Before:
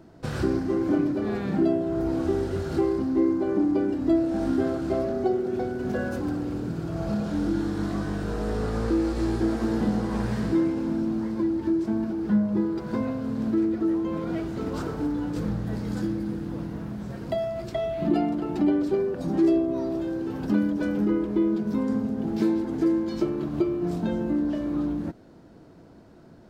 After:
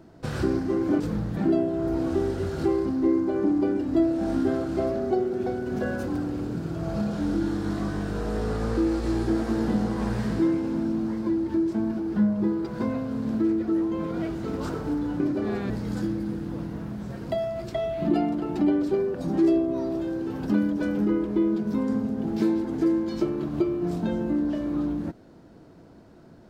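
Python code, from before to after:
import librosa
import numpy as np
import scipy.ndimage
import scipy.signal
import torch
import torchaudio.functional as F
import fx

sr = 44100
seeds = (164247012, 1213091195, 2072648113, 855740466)

y = fx.edit(x, sr, fx.swap(start_s=1.0, length_s=0.5, other_s=15.33, other_length_s=0.37), tone=tone)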